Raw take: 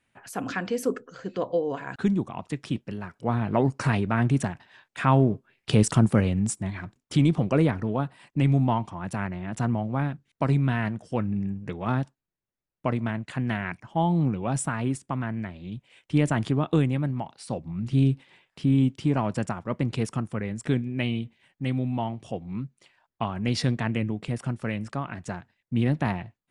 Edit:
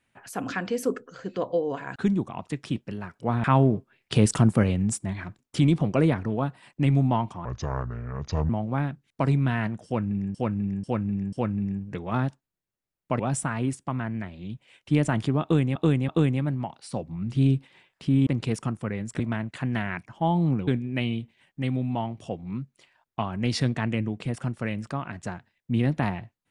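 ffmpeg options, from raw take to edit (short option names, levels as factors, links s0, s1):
-filter_complex "[0:a]asplit=13[s0][s1][s2][s3][s4][s5][s6][s7][s8][s9][s10][s11][s12];[s0]atrim=end=3.442[s13];[s1]atrim=start=5.008:end=9.024[s14];[s2]atrim=start=9.02:end=9.71,asetpts=PTS-STARTPTS,asetrate=29106,aresample=44100[s15];[s3]atrim=start=9.706:end=11.562[s16];[s4]atrim=start=11.068:end=11.562[s17];[s5]atrim=start=11.068:end=11.562[s18];[s6]atrim=start=11.068:end=12.942[s19];[s7]atrim=start=14.418:end=16.982[s20];[s8]atrim=start=16.648:end=16.982[s21];[s9]atrim=start=16.648:end=18.832[s22];[s10]atrim=start=19.768:end=20.702[s23];[s11]atrim=start=12.938:end=14.422[s24];[s12]atrim=start=20.698[s25];[s13][s14]acrossfade=d=0.004:c1=hsin:c2=hsin[s26];[s26][s15]acrossfade=d=0.004:c1=hsin:c2=hsin[s27];[s27][s16]acrossfade=d=0.004:c1=hsin:c2=hsin[s28];[s28][s17]acrossfade=d=0.004:c1=hsin:c2=hsin[s29];[s29][s18]acrossfade=d=0.004:c1=hsin:c2=hsin[s30];[s30][s19]acrossfade=d=0.004:c1=hsin:c2=hsin[s31];[s31][s20]acrossfade=d=0.004:c1=hsin:c2=hsin[s32];[s32][s21]acrossfade=d=0.004:c1=hsin:c2=hsin[s33];[s33][s22]acrossfade=d=0.004:c1=hsin:c2=hsin[s34];[s34][s23]acrossfade=d=0.004:c1=hsin:c2=hsin[s35];[s35][s24]acrossfade=d=0.004:c1=hsin:c2=hsin[s36];[s36][s25]acrossfade=d=0.004:c1=hsin:c2=hsin"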